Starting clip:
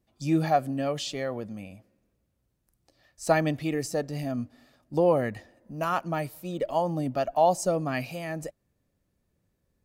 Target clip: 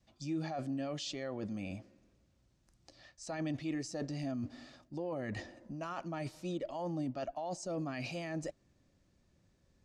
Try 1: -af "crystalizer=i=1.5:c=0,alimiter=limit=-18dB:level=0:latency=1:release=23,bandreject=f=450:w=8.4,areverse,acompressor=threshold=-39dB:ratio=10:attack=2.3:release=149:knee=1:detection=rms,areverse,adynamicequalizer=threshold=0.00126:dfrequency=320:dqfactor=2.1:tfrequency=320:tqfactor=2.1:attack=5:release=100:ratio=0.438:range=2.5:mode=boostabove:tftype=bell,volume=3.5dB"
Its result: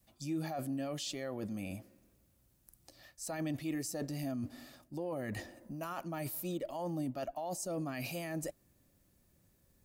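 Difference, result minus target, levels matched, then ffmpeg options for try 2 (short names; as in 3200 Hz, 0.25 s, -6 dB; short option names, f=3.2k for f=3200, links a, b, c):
8000 Hz band +5.5 dB
-af "crystalizer=i=1.5:c=0,alimiter=limit=-18dB:level=0:latency=1:release=23,bandreject=f=450:w=8.4,areverse,acompressor=threshold=-39dB:ratio=10:attack=2.3:release=149:knee=1:detection=rms,areverse,adynamicequalizer=threshold=0.00126:dfrequency=320:dqfactor=2.1:tfrequency=320:tqfactor=2.1:attack=5:release=100:ratio=0.438:range=2.5:mode=boostabove:tftype=bell,lowpass=f=6.5k:w=0.5412,lowpass=f=6.5k:w=1.3066,volume=3.5dB"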